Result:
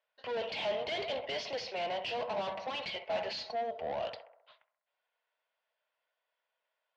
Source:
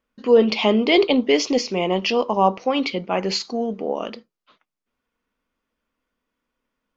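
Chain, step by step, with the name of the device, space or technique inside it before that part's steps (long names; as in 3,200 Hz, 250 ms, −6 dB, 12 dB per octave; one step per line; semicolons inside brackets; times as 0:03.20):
inverse Chebyshev high-pass filter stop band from 190 Hz, stop band 60 dB
0:02.18–0:03.81: comb filter 4.6 ms, depth 57%
analogue delay pedal into a guitar amplifier (bucket-brigade delay 66 ms, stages 1,024, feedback 55%, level −16 dB; tube saturation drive 34 dB, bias 0.4; loudspeaker in its box 85–4,300 Hz, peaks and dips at 100 Hz +6 dB, 200 Hz +5 dB, 630 Hz +7 dB, 1,200 Hz −10 dB, 2,300 Hz −3 dB)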